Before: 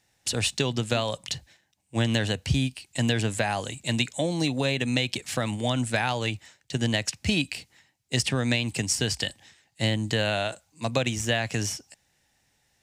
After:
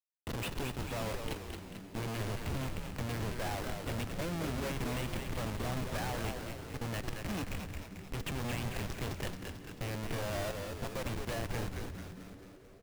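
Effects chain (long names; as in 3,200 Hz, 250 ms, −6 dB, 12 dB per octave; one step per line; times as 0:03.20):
low-pass filter 2,300 Hz 12 dB per octave
low-shelf EQ 370 Hz −8 dB
notch filter 1,400 Hz, Q 23
in parallel at −2 dB: brickwall limiter −24.5 dBFS, peak gain reduction 10.5 dB
on the sum: comparator with hysteresis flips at −29.5 dBFS
echo with shifted repeats 221 ms, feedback 58%, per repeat −99 Hz, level −5 dB
on a send at −13 dB: convolution reverb RT60 4.6 s, pre-delay 7 ms
on the sum: level −7 dB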